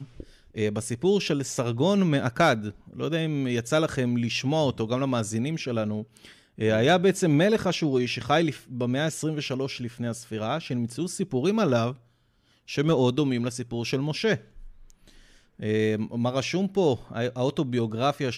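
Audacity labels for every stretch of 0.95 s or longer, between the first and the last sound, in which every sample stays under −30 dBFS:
14.360000	15.620000	silence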